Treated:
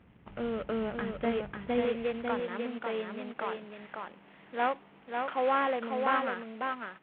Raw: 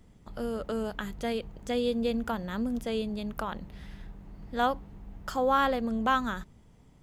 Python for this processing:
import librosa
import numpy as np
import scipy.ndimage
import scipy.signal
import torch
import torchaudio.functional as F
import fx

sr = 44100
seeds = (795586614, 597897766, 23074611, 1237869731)

y = fx.cvsd(x, sr, bps=16000)
y = fx.highpass(y, sr, hz=fx.steps((0.0, 73.0), (1.85, 380.0)), slope=12)
y = y + 10.0 ** (-4.5 / 20.0) * np.pad(y, (int(546 * sr / 1000.0), 0))[:len(y)]